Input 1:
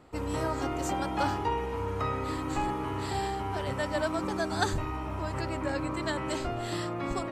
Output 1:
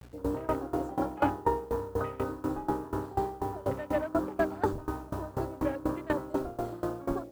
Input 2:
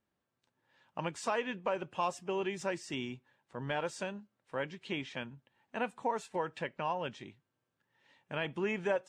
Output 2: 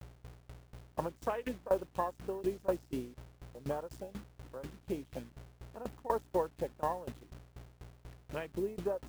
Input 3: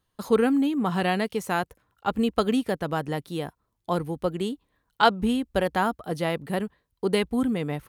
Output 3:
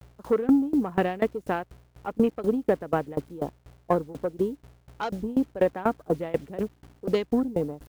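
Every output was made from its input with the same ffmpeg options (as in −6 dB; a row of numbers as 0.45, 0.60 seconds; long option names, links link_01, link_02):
-filter_complex "[0:a]aeval=exprs='val(0)+0.00501*(sin(2*PI*60*n/s)+sin(2*PI*2*60*n/s)/2+sin(2*PI*3*60*n/s)/3+sin(2*PI*4*60*n/s)/4+sin(2*PI*5*60*n/s)/5)':channel_layout=same,afwtdn=0.0158,adynamicequalizer=threshold=0.00794:dfrequency=280:dqfactor=4.8:tfrequency=280:tqfactor=4.8:attack=5:release=100:ratio=0.375:range=2:mode=boostabove:tftype=bell,asplit=2[link_01][link_02];[link_02]aeval=exprs='sgn(val(0))*max(abs(val(0))-0.00531,0)':channel_layout=same,volume=-9.5dB[link_03];[link_01][link_03]amix=inputs=2:normalize=0,equalizer=frequency=470:width_type=o:width=1.3:gain=7,asoftclip=type=tanh:threshold=-7dB,acrusher=bits=7:mix=0:aa=0.000001,aeval=exprs='val(0)*pow(10,-21*if(lt(mod(4.1*n/s,1),2*abs(4.1)/1000),1-mod(4.1*n/s,1)/(2*abs(4.1)/1000),(mod(4.1*n/s,1)-2*abs(4.1)/1000)/(1-2*abs(4.1)/1000))/20)':channel_layout=same"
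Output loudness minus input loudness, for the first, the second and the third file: −1.0, −1.0, −1.5 LU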